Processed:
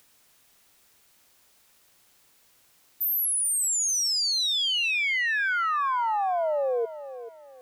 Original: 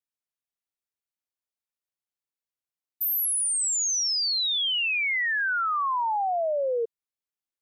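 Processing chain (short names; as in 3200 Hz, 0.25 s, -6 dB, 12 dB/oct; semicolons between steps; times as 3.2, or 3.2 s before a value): upward compressor, threshold -37 dBFS; lo-fi delay 0.436 s, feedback 35%, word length 9-bit, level -13 dB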